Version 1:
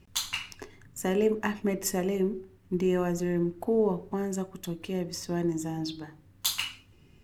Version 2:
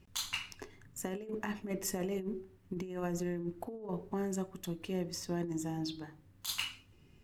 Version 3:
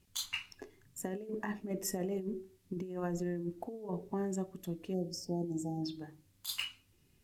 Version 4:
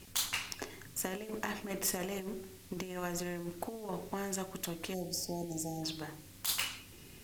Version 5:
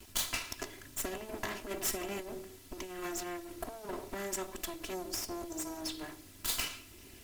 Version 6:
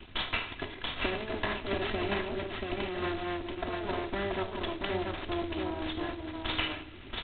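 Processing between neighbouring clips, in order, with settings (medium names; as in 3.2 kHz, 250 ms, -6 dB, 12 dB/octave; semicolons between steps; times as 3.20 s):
compressor with a negative ratio -29 dBFS, ratio -0.5; trim -6.5 dB
spectral noise reduction 8 dB; spectral selection erased 4.94–5.83 s, 880–4300 Hz; band noise 1.7–15 kHz -78 dBFS
spectrum-flattening compressor 2:1; trim +5 dB
comb filter that takes the minimum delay 3 ms; trim +1.5 dB
octave divider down 2 oct, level -5 dB; delay 683 ms -3.5 dB; trim +5.5 dB; G.726 16 kbps 8 kHz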